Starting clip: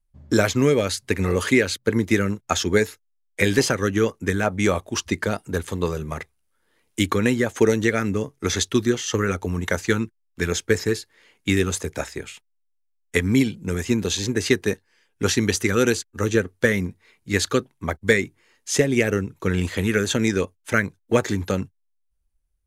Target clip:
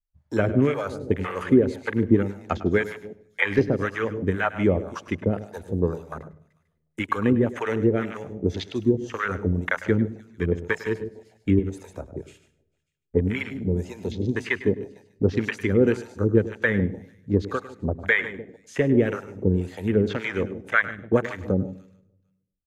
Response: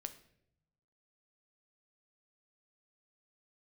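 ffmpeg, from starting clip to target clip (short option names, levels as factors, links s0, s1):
-filter_complex "[0:a]aecho=1:1:149|298|447|596|745:0.2|0.0978|0.0479|0.0235|0.0115,afwtdn=0.0355,asettb=1/sr,asplit=3[s0][s1][s2];[s0]atrim=end=11.594[s3];[s1]atrim=start=11.59:end=12.27,asetpts=PTS-STARTPTS,afade=t=in:d=0.004:c=qsin,afade=t=out:st=0.676:d=0.004:c=qsin,acrossover=split=180|810[s4][s5][s6];[s4]acompressor=threshold=0.0178:ratio=4[s7];[s5]acompressor=threshold=0.0251:ratio=4[s8];[s6]acompressor=threshold=0.00891:ratio=4[s9];[s7][s8][s9]amix=inputs=3:normalize=0[s10];[s2]atrim=start=12.266[s11];[s3][s10]acrossfade=d=0.004:c1=hsin:c2=qsin[s12];[s12][s11]acrossfade=d=0.004:c1=qsin:c2=hsin,acrossover=split=670[s13][s14];[s13]aeval=exprs='val(0)*(1-1/2+1/2*cos(2*PI*1.9*n/s))':c=same[s15];[s14]aeval=exprs='val(0)*(1-1/2-1/2*cos(2*PI*1.9*n/s))':c=same[s16];[s15][s16]amix=inputs=2:normalize=0,acrossover=split=2900[s17][s18];[s18]acompressor=threshold=0.00447:ratio=4:attack=1:release=60[s19];[s17][s19]amix=inputs=2:normalize=0,asplit=2[s20][s21];[1:a]atrim=start_sample=2205,adelay=102[s22];[s21][s22]afir=irnorm=-1:irlink=0,volume=0.266[s23];[s20][s23]amix=inputs=2:normalize=0,volume=1.41"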